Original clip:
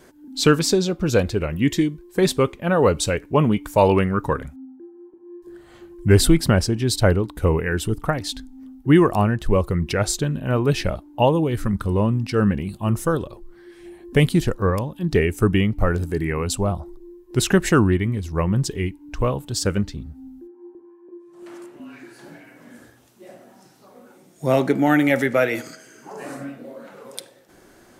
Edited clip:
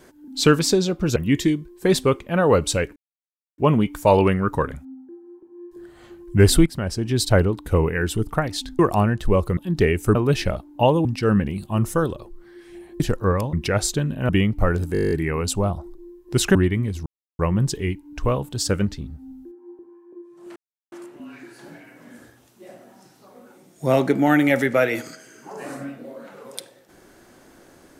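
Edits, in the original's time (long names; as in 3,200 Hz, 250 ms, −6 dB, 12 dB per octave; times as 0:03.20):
0:01.16–0:01.49: remove
0:03.29: splice in silence 0.62 s
0:06.37–0:06.82: fade in quadratic, from −12.5 dB
0:08.50–0:09.00: remove
0:09.78–0:10.54: swap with 0:14.91–0:15.49
0:11.44–0:12.16: remove
0:14.11–0:14.38: remove
0:16.13: stutter 0.02 s, 10 plays
0:17.57–0:17.84: remove
0:18.35: splice in silence 0.33 s
0:21.52: splice in silence 0.36 s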